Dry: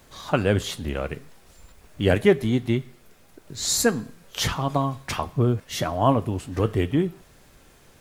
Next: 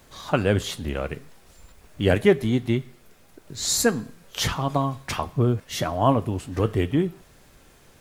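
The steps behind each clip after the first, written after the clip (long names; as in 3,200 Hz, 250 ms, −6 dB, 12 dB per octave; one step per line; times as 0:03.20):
no processing that can be heard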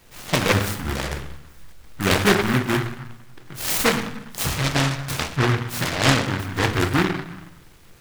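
on a send at −4 dB: convolution reverb RT60 0.70 s, pre-delay 6 ms
on the sum: short delay modulated by noise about 1,300 Hz, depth 0.34 ms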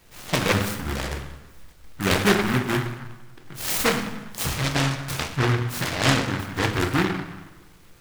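dense smooth reverb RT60 1.2 s, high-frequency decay 0.7×, DRR 11 dB
level −2.5 dB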